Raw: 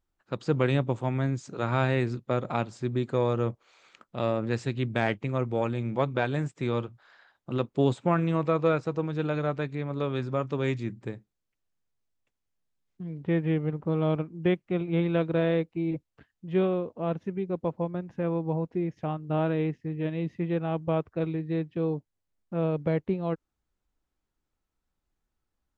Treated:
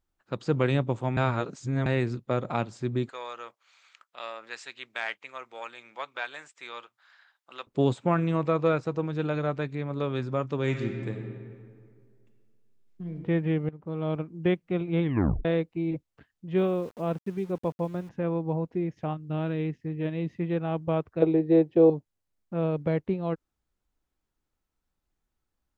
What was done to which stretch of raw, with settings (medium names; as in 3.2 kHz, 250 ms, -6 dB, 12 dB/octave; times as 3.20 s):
1.17–1.86 s: reverse
3.09–7.67 s: high-pass 1.2 kHz
10.59–13.15 s: reverb throw, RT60 2.1 s, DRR 3.5 dB
13.69–14.36 s: fade in, from -14.5 dB
15.03 s: tape stop 0.42 s
16.57–18.09 s: small samples zeroed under -48 dBFS
19.13–19.80 s: peaking EQ 780 Hz -10 dB -> -4 dB 2.2 oct
21.22–21.90 s: high-order bell 530 Hz +12.5 dB